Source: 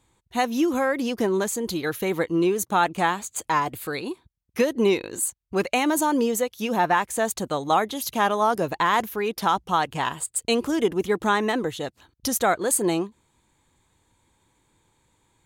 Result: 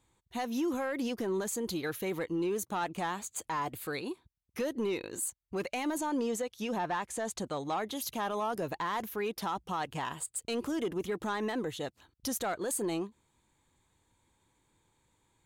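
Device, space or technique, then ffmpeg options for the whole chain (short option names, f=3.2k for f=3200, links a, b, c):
soft clipper into limiter: -filter_complex "[0:a]asoftclip=type=tanh:threshold=-14dB,alimiter=limit=-19.5dB:level=0:latency=1:release=35,asplit=3[a][b][c];[a]afade=t=out:st=5.97:d=0.02[d];[b]lowpass=9.3k,afade=t=in:st=5.97:d=0.02,afade=t=out:st=7.84:d=0.02[e];[c]afade=t=in:st=7.84:d=0.02[f];[d][e][f]amix=inputs=3:normalize=0,volume=-6.5dB"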